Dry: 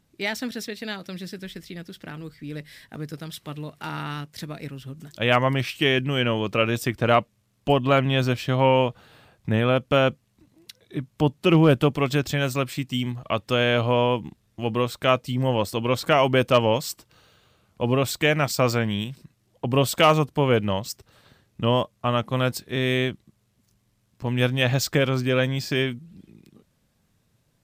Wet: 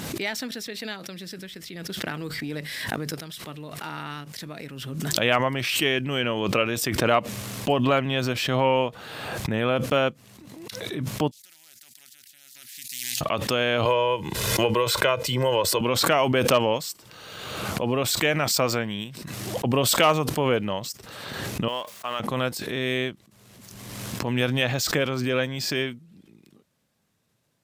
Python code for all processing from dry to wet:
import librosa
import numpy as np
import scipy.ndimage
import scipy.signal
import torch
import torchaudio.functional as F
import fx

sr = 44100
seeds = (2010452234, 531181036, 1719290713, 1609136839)

y = fx.chain(x, sr, fx.transient(attack_db=8, sustain_db=-4),
    fx.env_flatten(amount_pct=70), at=(1.89, 3.21))
y = fx.chain(y, sr, fx.cheby2_highpass(hz=1200.0, order=4, stop_db=60),
    fx.tilt_eq(slope=-3.0),
    fx.spectral_comp(ratio=10.0), at=(11.31, 13.21))
y = fx.chain(y, sr, fx.low_shelf(hz=290.0, db=-5.5),
    fx.comb(ms=2.0, depth=0.65),
    fx.band_squash(depth_pct=100), at=(13.85, 15.81))
y = fx.chain(y, sr, fx.law_mismatch(coded='A'),
    fx.highpass(hz=1200.0, slope=6), at=(21.68, 22.2))
y = fx.highpass(y, sr, hz=220.0, slope=6)
y = fx.pre_swell(y, sr, db_per_s=32.0)
y = y * 10.0 ** (-2.0 / 20.0)